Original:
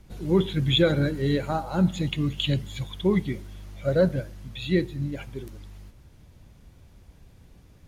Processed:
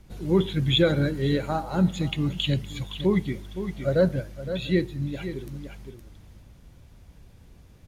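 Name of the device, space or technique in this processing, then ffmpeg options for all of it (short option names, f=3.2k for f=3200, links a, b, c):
ducked delay: -filter_complex "[0:a]asplit=3[a][b][c];[b]adelay=515,volume=-7dB[d];[c]apad=whole_len=370096[e];[d][e]sidechaincompress=threshold=-34dB:ratio=8:attack=16:release=449[f];[a][f]amix=inputs=2:normalize=0"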